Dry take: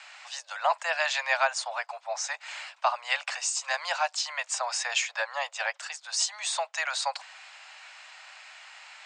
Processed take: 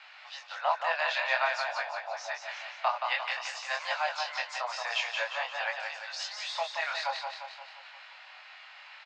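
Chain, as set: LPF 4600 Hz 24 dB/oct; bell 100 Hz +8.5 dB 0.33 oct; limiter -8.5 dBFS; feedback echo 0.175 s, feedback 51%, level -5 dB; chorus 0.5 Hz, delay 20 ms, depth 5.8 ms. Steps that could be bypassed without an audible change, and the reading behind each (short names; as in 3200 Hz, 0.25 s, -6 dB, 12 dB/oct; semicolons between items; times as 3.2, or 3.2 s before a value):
bell 100 Hz: input band starts at 450 Hz; limiter -8.5 dBFS: input peak -10.5 dBFS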